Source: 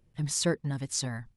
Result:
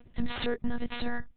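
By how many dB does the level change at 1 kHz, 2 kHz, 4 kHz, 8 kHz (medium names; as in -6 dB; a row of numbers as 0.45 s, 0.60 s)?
+4.5 dB, +2.5 dB, -4.0 dB, under -40 dB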